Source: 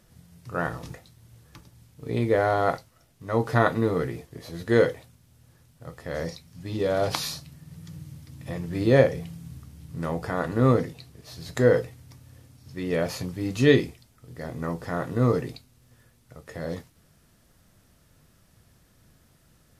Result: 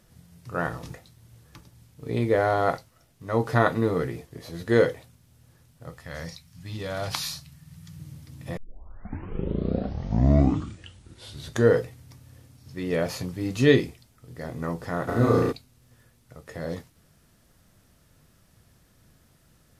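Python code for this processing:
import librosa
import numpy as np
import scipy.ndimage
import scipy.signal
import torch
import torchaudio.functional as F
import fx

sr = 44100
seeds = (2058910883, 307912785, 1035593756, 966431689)

y = fx.peak_eq(x, sr, hz=400.0, db=-12.5, octaves=1.6, at=(5.98, 8.0))
y = fx.room_flutter(y, sr, wall_m=5.9, rt60_s=1.1, at=(15.07, 15.51), fade=0.02)
y = fx.edit(y, sr, fx.tape_start(start_s=8.57, length_s=3.25), tone=tone)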